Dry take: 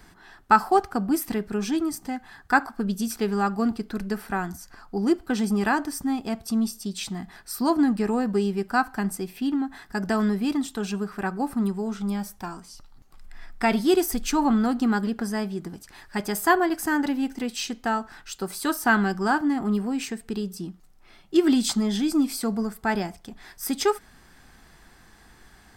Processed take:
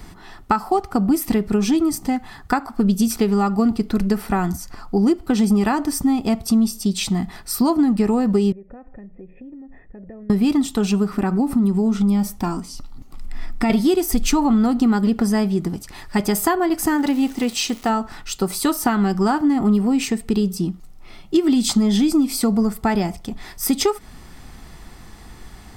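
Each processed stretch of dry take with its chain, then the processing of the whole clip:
0:08.52–0:10.30: spectral tilt −3.5 dB per octave + downward compressor 10 to 1, threshold −30 dBFS + formant resonators in series e
0:11.09–0:13.70: parametric band 260 Hz +8 dB 0.64 octaves + downward compressor 3 to 1, threshold −26 dBFS
0:16.96–0:17.88: low-shelf EQ 180 Hz −8.5 dB + surface crackle 510 per second −38 dBFS
whole clip: downward compressor 5 to 1, threshold −25 dBFS; low-shelf EQ 240 Hz +6.5 dB; notch filter 1,600 Hz, Q 5.6; level +8.5 dB

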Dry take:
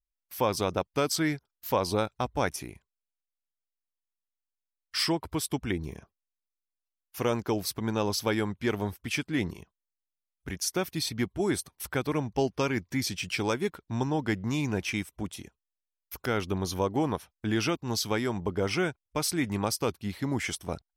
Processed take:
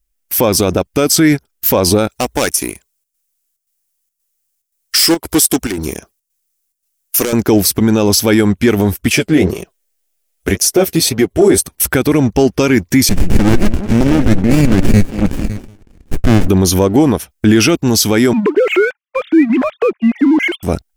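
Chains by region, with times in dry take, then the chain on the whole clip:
0:02.09–0:07.33: hard clipping −27 dBFS + bass and treble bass −10 dB, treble +8 dB + square-wave tremolo 1.9 Hz, depth 60%, duty 80%
0:09.10–0:11.58: flat-topped bell 530 Hz +8.5 dB 1.2 octaves + flanger 1.9 Hz, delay 5.2 ms, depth 8.3 ms, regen +21% + one half of a high-frequency compander encoder only
0:13.09–0:16.48: flat-topped bell 1,900 Hz +12 dB 1.2 octaves + echo through a band-pass that steps 186 ms, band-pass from 250 Hz, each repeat 1.4 octaves, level −10 dB + windowed peak hold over 65 samples
0:18.33–0:20.63: three sine waves on the formant tracks + downward compressor 2 to 1, threshold −34 dBFS
whole clip: octave-band graphic EQ 125/500/1,000/2,000/4,000 Hz −7/−3/−10/−3/−7 dB; leveller curve on the samples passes 1; boost into a limiter +24 dB; level −1 dB

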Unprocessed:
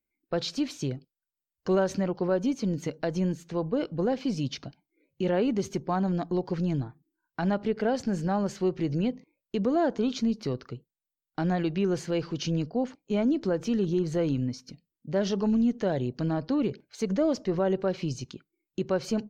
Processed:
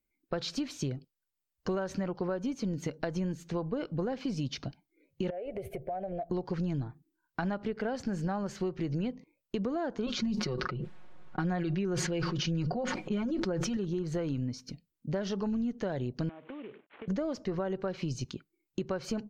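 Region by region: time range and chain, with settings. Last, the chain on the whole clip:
0:05.30–0:06.30: drawn EQ curve 120 Hz 0 dB, 240 Hz −18 dB, 350 Hz −4 dB, 670 Hz +15 dB, 1,000 Hz −20 dB, 2,200 Hz +1 dB, 4,100 Hz −18 dB, 6,500 Hz −26 dB, 9,900 Hz +5 dB + downward compressor 5 to 1, threshold −35 dBFS
0:10.06–0:13.77: low-pass that shuts in the quiet parts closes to 1,300 Hz, open at −24.5 dBFS + comb filter 5.5 ms, depth 93% + level that may fall only so fast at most 23 dB per second
0:16.29–0:17.08: variable-slope delta modulation 16 kbit/s + high-pass filter 350 Hz + downward compressor 16 to 1, threshold −41 dBFS
whole clip: dynamic equaliser 1,400 Hz, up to +5 dB, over −42 dBFS, Q 0.95; downward compressor 6 to 1, threshold −32 dBFS; low-shelf EQ 93 Hz +7.5 dB; level +1 dB

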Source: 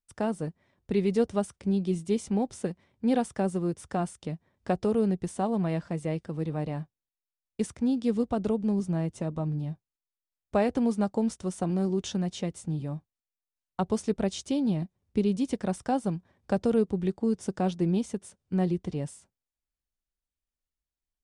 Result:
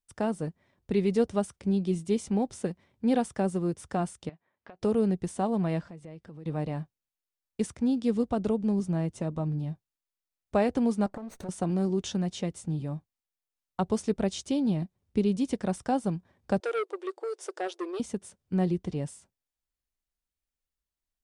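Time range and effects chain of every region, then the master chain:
0:04.29–0:04.82: resonant band-pass 1,800 Hz, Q 0.54 + high-frequency loss of the air 200 metres + downward compressor 10 to 1, threshold −44 dBFS
0:05.81–0:06.46: high-shelf EQ 7,600 Hz −9.5 dB + downward compressor 3 to 1, threshold −46 dBFS
0:11.06–0:11.49: lower of the sound and its delayed copy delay 0.48 ms + parametric band 690 Hz +13 dB 2.4 octaves + downward compressor 16 to 1, threshold −35 dBFS
0:16.60–0:18.00: linear-phase brick-wall high-pass 330 Hz + saturating transformer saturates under 1,100 Hz
whole clip: no processing

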